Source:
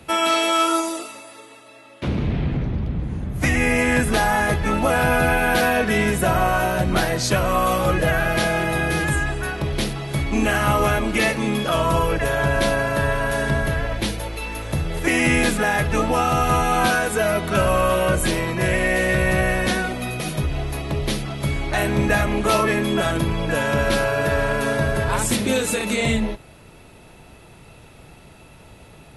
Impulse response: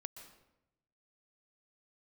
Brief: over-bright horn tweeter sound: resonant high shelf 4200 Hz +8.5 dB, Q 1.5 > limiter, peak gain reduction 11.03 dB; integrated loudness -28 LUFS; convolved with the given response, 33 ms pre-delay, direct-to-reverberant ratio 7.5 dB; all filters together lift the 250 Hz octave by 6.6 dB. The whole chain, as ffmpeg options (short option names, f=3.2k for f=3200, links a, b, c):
-filter_complex "[0:a]equalizer=f=250:t=o:g=8.5,asplit=2[a][b];[1:a]atrim=start_sample=2205,adelay=33[c];[b][c]afir=irnorm=-1:irlink=0,volume=-3.5dB[d];[a][d]amix=inputs=2:normalize=0,highshelf=f=4.2k:t=q:w=1.5:g=8.5,volume=-6.5dB,alimiter=limit=-19dB:level=0:latency=1"